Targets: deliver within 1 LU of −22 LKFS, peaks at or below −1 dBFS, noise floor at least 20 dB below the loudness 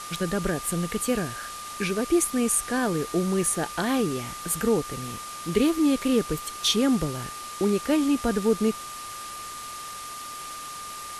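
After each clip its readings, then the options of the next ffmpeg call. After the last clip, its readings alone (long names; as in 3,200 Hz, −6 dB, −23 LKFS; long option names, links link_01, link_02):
interfering tone 1,200 Hz; level of the tone −37 dBFS; background noise floor −38 dBFS; target noise floor −47 dBFS; integrated loudness −26.5 LKFS; sample peak −9.5 dBFS; target loudness −22.0 LKFS
→ -af "bandreject=frequency=1200:width=30"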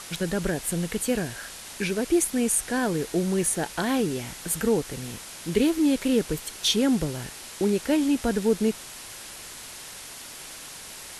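interfering tone none found; background noise floor −42 dBFS; target noise floor −46 dBFS
→ -af "afftdn=noise_reduction=6:noise_floor=-42"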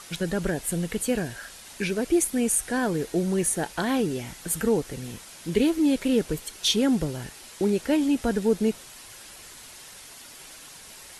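background noise floor −46 dBFS; integrated loudness −25.5 LKFS; sample peak −10.0 dBFS; target loudness −22.0 LKFS
→ -af "volume=3.5dB"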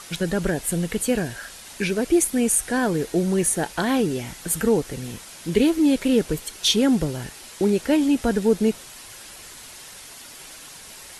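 integrated loudness −22.0 LKFS; sample peak −6.5 dBFS; background noise floor −42 dBFS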